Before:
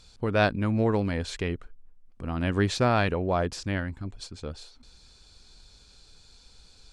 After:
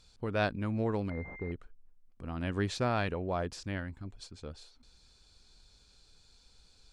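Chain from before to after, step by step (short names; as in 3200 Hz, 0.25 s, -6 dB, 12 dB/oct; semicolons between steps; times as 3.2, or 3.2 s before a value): 1.1–1.52 pulse-width modulation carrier 2100 Hz; gain -7.5 dB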